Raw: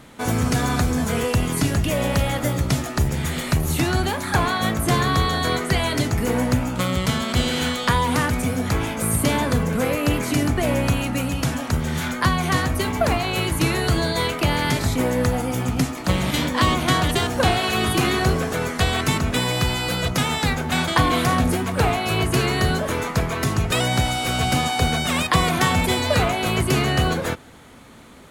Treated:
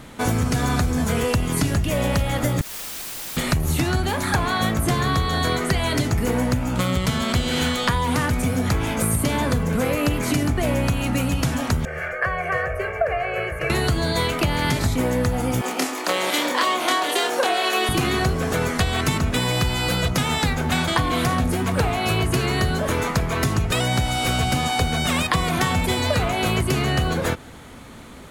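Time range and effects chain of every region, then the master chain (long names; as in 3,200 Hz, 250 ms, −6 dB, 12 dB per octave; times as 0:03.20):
0:02.61–0:03.37: inverse Chebyshev high-pass filter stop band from 2,800 Hz, stop band 80 dB + compressor whose output falls as the input rises −51 dBFS + bit-depth reduction 6 bits, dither triangular
0:11.85–0:13.70: three-way crossover with the lows and the highs turned down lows −16 dB, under 310 Hz, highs −23 dB, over 2,900 Hz + phaser with its sweep stopped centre 1,000 Hz, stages 6 + comb filter 1.8 ms, depth 62%
0:15.61–0:17.89: high-pass filter 340 Hz 24 dB per octave + double-tracking delay 27 ms −3.5 dB
whole clip: low-shelf EQ 84 Hz +6 dB; downward compressor, threshold −21 dBFS; level +3.5 dB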